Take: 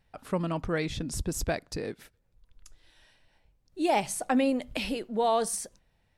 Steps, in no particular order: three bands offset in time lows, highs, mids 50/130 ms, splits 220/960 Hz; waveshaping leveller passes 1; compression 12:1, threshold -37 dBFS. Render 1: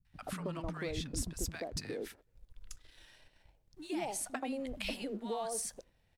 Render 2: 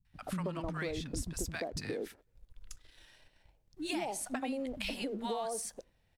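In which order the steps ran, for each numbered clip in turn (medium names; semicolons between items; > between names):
compression > three bands offset in time > waveshaping leveller; three bands offset in time > compression > waveshaping leveller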